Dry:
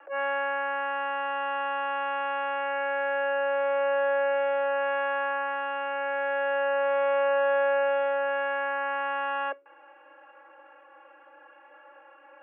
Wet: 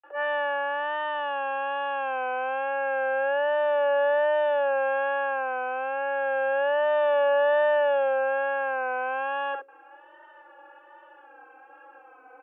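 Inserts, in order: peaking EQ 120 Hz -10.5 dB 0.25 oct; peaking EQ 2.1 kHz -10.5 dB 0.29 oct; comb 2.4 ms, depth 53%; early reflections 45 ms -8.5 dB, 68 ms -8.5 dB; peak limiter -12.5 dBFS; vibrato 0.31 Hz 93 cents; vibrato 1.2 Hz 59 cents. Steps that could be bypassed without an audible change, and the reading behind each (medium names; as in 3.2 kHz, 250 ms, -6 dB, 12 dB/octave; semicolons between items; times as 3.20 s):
peaking EQ 120 Hz: input has nothing below 270 Hz; peak limiter -12.5 dBFS: peak at its input -14.5 dBFS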